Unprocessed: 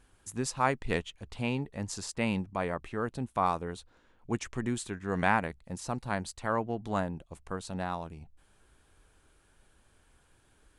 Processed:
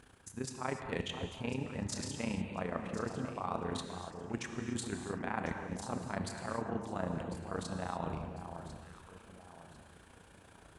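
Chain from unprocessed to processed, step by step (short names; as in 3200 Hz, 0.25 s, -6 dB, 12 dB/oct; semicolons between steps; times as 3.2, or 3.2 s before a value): HPF 77 Hz; high shelf 5100 Hz -5.5 dB; reverse; compressor 6:1, threshold -43 dBFS, peak gain reduction 21 dB; reverse; AM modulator 29 Hz, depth 75%; on a send: echo with dull and thin repeats by turns 0.524 s, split 1200 Hz, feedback 59%, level -8 dB; on the sum: non-linear reverb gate 0.32 s flat, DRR 5 dB; gain +10.5 dB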